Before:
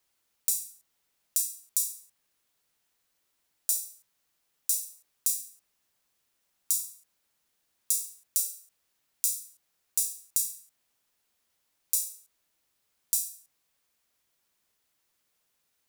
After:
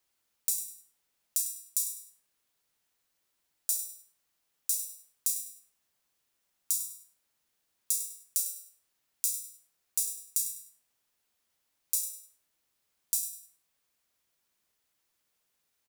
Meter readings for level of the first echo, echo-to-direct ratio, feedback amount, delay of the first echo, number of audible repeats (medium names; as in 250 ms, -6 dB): -14.5 dB, -14.0 dB, 25%, 100 ms, 2